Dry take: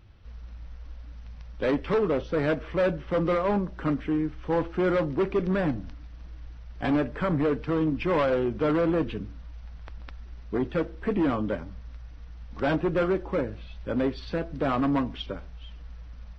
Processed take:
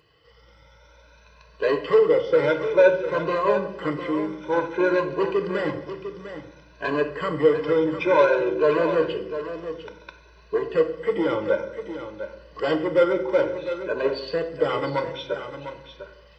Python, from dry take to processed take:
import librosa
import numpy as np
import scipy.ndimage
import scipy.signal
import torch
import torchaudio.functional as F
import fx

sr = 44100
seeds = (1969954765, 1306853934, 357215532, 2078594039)

p1 = fx.spec_ripple(x, sr, per_octave=1.5, drift_hz=0.56, depth_db=14)
p2 = scipy.signal.sosfilt(scipy.signal.butter(2, 270.0, 'highpass', fs=sr, output='sos'), p1)
p3 = p2 + 0.88 * np.pad(p2, (int(2.0 * sr / 1000.0), 0))[:len(p2)]
p4 = p3 + fx.echo_single(p3, sr, ms=701, db=-10.5, dry=0)
y = fx.room_shoebox(p4, sr, seeds[0], volume_m3=260.0, walls='mixed', distance_m=0.45)